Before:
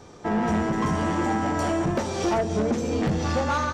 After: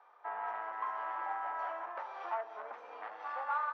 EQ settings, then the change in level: high-pass 900 Hz 24 dB/octave; low-pass 1.2 kHz 12 dB/octave; distance through air 130 m; -3.0 dB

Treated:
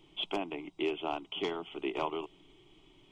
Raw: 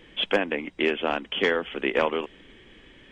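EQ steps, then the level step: static phaser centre 340 Hz, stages 8; -5.5 dB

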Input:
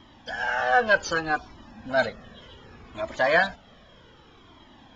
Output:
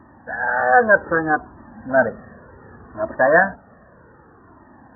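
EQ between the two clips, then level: high-pass 62 Hz; dynamic bell 300 Hz, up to +5 dB, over -37 dBFS, Q 0.76; brick-wall FIR low-pass 1.9 kHz; +5.5 dB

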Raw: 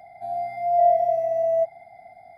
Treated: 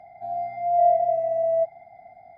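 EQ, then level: low-pass 1.6 kHz 6 dB/octave; 0.0 dB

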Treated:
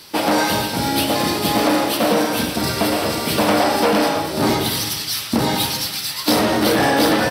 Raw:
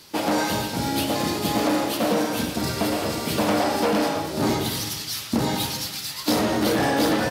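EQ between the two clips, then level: bass shelf 450 Hz -4 dB; band-stop 6.8 kHz, Q 5.2; +7.0 dB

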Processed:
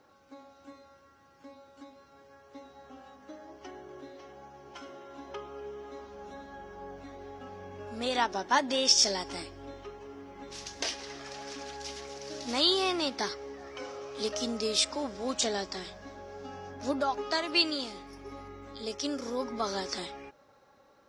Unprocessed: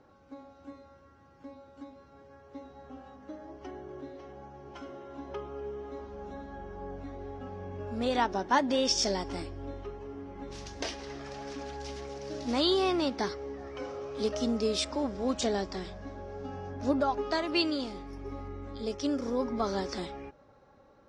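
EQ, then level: tilt EQ +2.5 dB/octave; 0.0 dB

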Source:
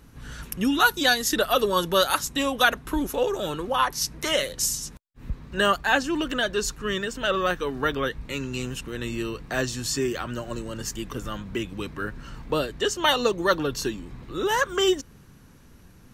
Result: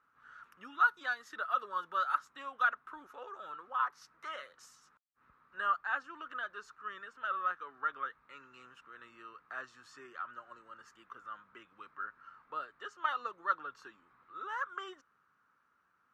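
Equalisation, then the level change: band-pass filter 1.3 kHz, Q 6.3; -3.0 dB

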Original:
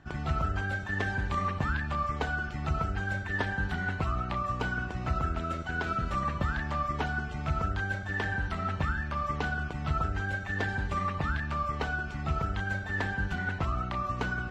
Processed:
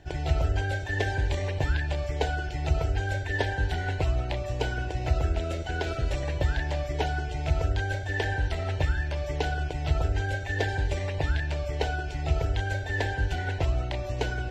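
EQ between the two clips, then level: static phaser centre 500 Hz, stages 4; +8.0 dB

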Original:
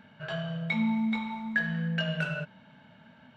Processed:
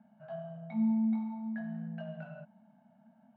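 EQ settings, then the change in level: two resonant band-passes 390 Hz, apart 1.7 oct; 0.0 dB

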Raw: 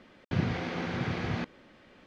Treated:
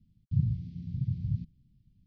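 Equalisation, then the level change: elliptic band-stop 140–5500 Hz, stop band 70 dB; distance through air 350 m; treble shelf 3.2 kHz -11.5 dB; +5.5 dB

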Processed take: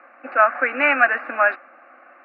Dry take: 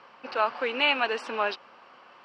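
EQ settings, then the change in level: elliptic band-pass 270–2600 Hz, stop band 40 dB; dynamic bell 1.6 kHz, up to +8 dB, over -40 dBFS, Q 1.1; static phaser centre 640 Hz, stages 8; +8.5 dB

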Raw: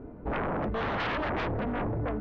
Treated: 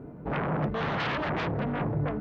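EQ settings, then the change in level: high-pass 97 Hz 6 dB/octave; peaking EQ 150 Hz +14.5 dB 0.36 oct; treble shelf 4.2 kHz +6 dB; 0.0 dB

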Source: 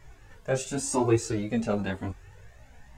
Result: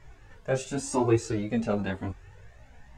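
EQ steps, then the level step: treble shelf 8.7 kHz -11.5 dB; 0.0 dB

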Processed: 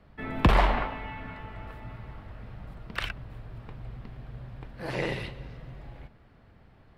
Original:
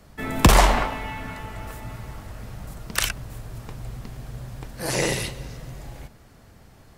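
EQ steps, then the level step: distance through air 440 m; treble shelf 2.3 kHz +8.5 dB; -5.5 dB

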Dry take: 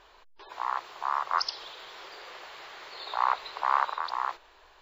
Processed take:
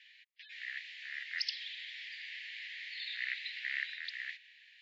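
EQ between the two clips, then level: steep high-pass 1.8 kHz 96 dB/octave; low-pass 2.5 kHz 12 dB/octave; +8.0 dB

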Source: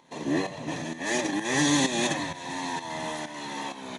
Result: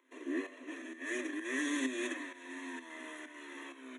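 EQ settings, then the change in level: rippled Chebyshev high-pass 250 Hz, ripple 6 dB; static phaser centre 2 kHz, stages 4; -4.0 dB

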